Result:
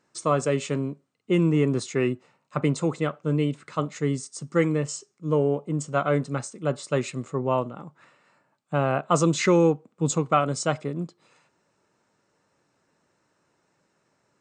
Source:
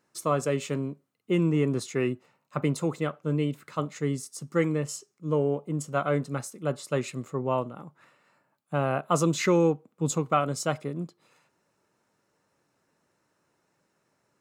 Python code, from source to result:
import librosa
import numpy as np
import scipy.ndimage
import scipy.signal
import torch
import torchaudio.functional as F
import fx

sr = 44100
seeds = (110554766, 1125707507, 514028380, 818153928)

y = fx.brickwall_lowpass(x, sr, high_hz=9100.0)
y = y * 10.0 ** (3.0 / 20.0)